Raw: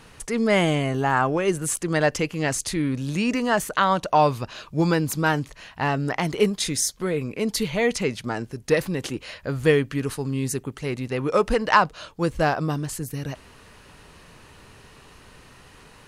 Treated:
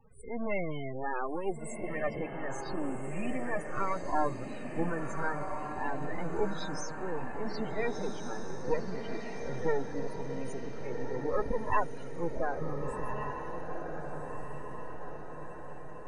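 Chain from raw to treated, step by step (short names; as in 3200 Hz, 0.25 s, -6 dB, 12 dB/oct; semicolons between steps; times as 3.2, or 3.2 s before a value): spectral swells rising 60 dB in 0.31 s; high shelf 10000 Hz -9.5 dB; half-wave rectifier; loudest bins only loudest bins 16; diffused feedback echo 1.489 s, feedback 55%, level -5 dB; gain -6.5 dB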